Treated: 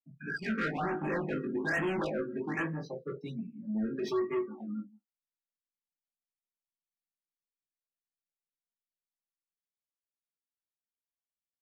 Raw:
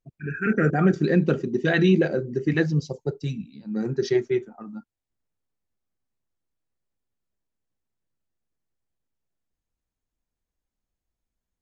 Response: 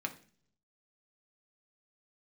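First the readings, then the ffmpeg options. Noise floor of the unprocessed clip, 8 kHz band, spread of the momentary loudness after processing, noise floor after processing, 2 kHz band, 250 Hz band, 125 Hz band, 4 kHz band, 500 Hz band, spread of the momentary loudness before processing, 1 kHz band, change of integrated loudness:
below −85 dBFS, can't be measured, 10 LU, below −85 dBFS, −6.5 dB, −11.0 dB, −16.5 dB, −11.5 dB, −10.5 dB, 15 LU, −4.0 dB, −11.0 dB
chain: -filter_complex "[0:a]aresample=16000,volume=19dB,asoftclip=hard,volume=-19dB,aresample=44100,asplit=2[link_01][link_02];[link_02]adelay=160,highpass=300,lowpass=3400,asoftclip=type=hard:threshold=-27.5dB,volume=-16dB[link_03];[link_01][link_03]amix=inputs=2:normalize=0,acrossover=split=280|1100[link_04][link_05][link_06];[link_04]acompressor=threshold=-36dB:ratio=6[link_07];[link_06]asplit=2[link_08][link_09];[link_09]adelay=18,volume=-6dB[link_10];[link_08][link_10]amix=inputs=2:normalize=0[link_11];[link_07][link_05][link_11]amix=inputs=3:normalize=0[link_12];[1:a]atrim=start_sample=2205,atrim=end_sample=3528[link_13];[link_12][link_13]afir=irnorm=-1:irlink=0,adynamicequalizer=threshold=0.00794:dfrequency=1100:dqfactor=1.2:tfrequency=1100:tqfactor=1.2:attack=5:release=100:ratio=0.375:range=2.5:mode=boostabove:tftype=bell,flanger=delay=17:depth=2.7:speed=0.31,asoftclip=type=tanh:threshold=-25dB,afftdn=noise_reduction=22:noise_floor=-45,adynamicsmooth=sensitivity=7:basefreq=4700,afftfilt=real='re*(1-between(b*sr/1024,780*pow(4900/780,0.5+0.5*sin(2*PI*1.2*pts/sr))/1.41,780*pow(4900/780,0.5+0.5*sin(2*PI*1.2*pts/sr))*1.41))':imag='im*(1-between(b*sr/1024,780*pow(4900/780,0.5+0.5*sin(2*PI*1.2*pts/sr))/1.41,780*pow(4900/780,0.5+0.5*sin(2*PI*1.2*pts/sr))*1.41))':win_size=1024:overlap=0.75,volume=-1.5dB"

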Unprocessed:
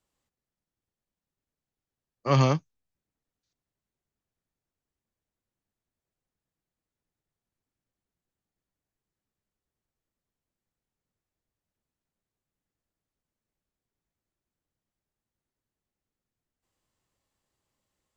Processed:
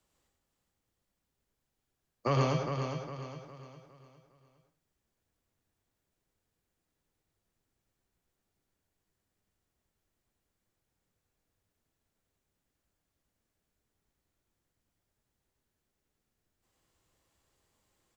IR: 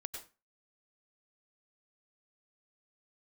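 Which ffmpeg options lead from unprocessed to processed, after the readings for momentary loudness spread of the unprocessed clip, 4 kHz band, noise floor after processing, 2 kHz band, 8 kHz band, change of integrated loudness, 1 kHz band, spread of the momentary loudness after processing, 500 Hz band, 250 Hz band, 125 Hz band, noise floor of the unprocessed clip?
11 LU, −5.0 dB, −84 dBFS, −4.0 dB, can't be measured, −8.5 dB, −4.0 dB, 22 LU, −3.5 dB, −5.5 dB, −6.0 dB, below −85 dBFS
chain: -filter_complex "[0:a]acrossover=split=130[link_01][link_02];[link_01]asoftclip=type=hard:threshold=-40dB[link_03];[link_02]acompressor=threshold=-32dB:ratio=6[link_04];[link_03][link_04]amix=inputs=2:normalize=0,aecho=1:1:408|816|1224|1632|2040:0.447|0.179|0.0715|0.0286|0.0114[link_05];[1:a]atrim=start_sample=2205[link_06];[link_05][link_06]afir=irnorm=-1:irlink=0,volume=7.5dB"

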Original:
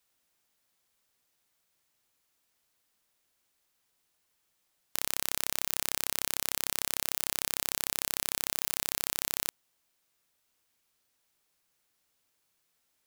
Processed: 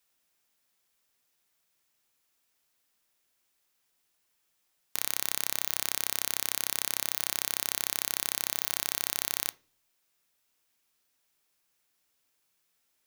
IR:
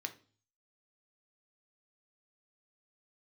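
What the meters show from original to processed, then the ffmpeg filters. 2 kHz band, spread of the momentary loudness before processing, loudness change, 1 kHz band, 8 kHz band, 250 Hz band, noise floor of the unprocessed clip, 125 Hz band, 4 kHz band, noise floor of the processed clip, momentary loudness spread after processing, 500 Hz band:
+0.5 dB, 2 LU, +1.0 dB, −0.5 dB, +0.5 dB, −1.5 dB, −76 dBFS, −3.5 dB, +0.5 dB, −76 dBFS, 2 LU, −1.5 dB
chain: -filter_complex "[0:a]asplit=2[link_01][link_02];[1:a]atrim=start_sample=2205,highshelf=frequency=9300:gain=6.5[link_03];[link_02][link_03]afir=irnorm=-1:irlink=0,volume=-4.5dB[link_04];[link_01][link_04]amix=inputs=2:normalize=0,volume=-3.5dB"

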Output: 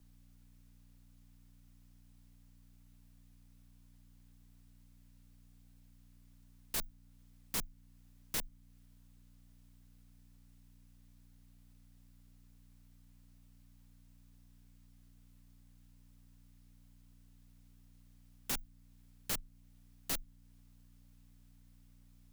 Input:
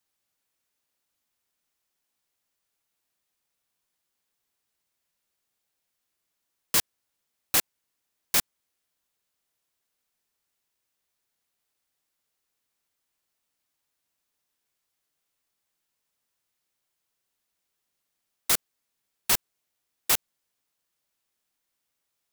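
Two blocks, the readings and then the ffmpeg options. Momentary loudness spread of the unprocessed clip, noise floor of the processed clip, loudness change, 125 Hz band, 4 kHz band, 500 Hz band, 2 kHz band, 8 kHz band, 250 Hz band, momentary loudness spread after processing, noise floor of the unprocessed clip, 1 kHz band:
5 LU, −62 dBFS, −14.5 dB, −3.0 dB, −14.0 dB, −11.5 dB, −14.0 dB, −14.0 dB, −6.0 dB, 12 LU, −81 dBFS, −13.5 dB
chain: -af "aeval=exprs='(mod(7.94*val(0)+1,2)-1)/7.94':channel_layout=same,alimiter=level_in=3dB:limit=-24dB:level=0:latency=1:release=397,volume=-3dB,aeval=exprs='(tanh(112*val(0)+0.65)-tanh(0.65))/112':channel_layout=same,equalizer=frequency=220:width=0.89:gain=9.5,aeval=exprs='val(0)+0.000398*(sin(2*PI*60*n/s)+sin(2*PI*2*60*n/s)/2+sin(2*PI*3*60*n/s)/3+sin(2*PI*4*60*n/s)/4+sin(2*PI*5*60*n/s)/5)':channel_layout=same,afreqshift=-24,volume=8dB"

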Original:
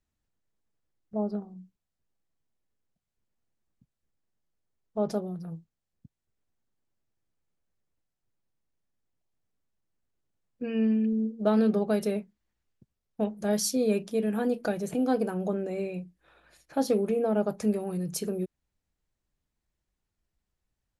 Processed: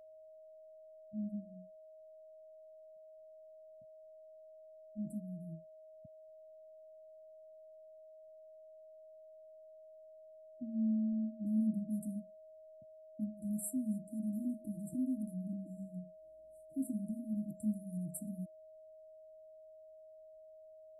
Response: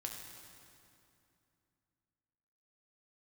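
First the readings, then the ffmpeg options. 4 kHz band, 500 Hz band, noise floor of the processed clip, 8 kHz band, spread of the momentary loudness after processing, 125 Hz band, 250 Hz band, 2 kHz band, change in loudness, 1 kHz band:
below −35 dB, −20.5 dB, −57 dBFS, −12.0 dB, 20 LU, −8.0 dB, −8.0 dB, below −40 dB, −10.5 dB, below −30 dB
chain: -af "afftfilt=real='re*(1-between(b*sr/4096,340,7500))':imag='im*(1-between(b*sr/4096,340,7500))':win_size=4096:overlap=0.75,aeval=exprs='val(0)+0.00501*sin(2*PI*630*n/s)':channel_layout=same,volume=-8dB"

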